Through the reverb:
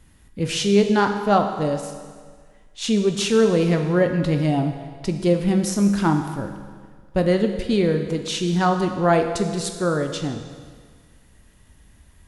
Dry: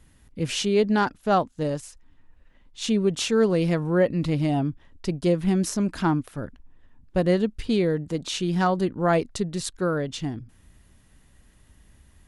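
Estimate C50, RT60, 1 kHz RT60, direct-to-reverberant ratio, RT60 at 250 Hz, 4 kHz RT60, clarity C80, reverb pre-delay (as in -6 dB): 7.5 dB, 1.7 s, 1.7 s, 5.0 dB, 1.8 s, 1.6 s, 8.5 dB, 15 ms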